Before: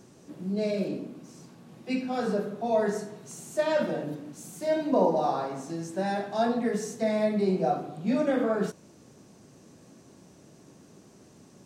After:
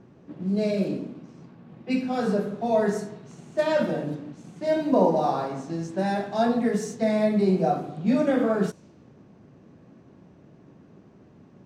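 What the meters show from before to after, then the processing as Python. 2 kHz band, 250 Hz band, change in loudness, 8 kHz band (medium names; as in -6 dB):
+2.5 dB, +4.5 dB, +3.5 dB, -1.5 dB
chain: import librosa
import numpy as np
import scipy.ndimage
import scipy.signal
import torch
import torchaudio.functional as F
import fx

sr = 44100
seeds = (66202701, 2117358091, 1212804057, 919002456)

p1 = fx.env_lowpass(x, sr, base_hz=2100.0, full_db=-25.5)
p2 = fx.bass_treble(p1, sr, bass_db=4, treble_db=-1)
p3 = np.sign(p2) * np.maximum(np.abs(p2) - 10.0 ** (-45.5 / 20.0), 0.0)
y = p2 + (p3 * 10.0 ** (-9.0 / 20.0))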